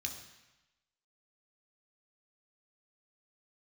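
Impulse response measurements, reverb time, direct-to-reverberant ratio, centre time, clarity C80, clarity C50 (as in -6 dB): 1.0 s, 2.0 dB, 24 ms, 9.5 dB, 7.5 dB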